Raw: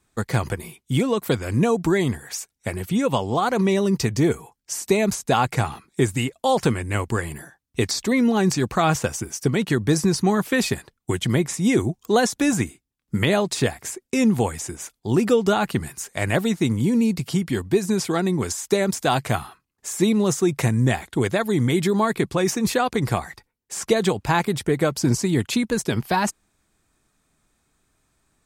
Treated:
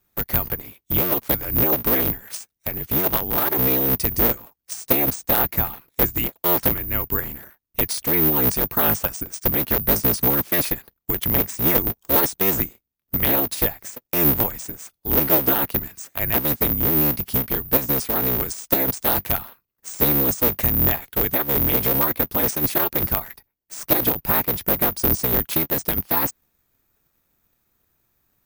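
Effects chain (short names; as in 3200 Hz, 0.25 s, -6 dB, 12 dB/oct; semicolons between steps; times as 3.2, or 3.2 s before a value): cycle switcher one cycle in 3, inverted; careless resampling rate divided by 3×, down filtered, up zero stuff; gain -4.5 dB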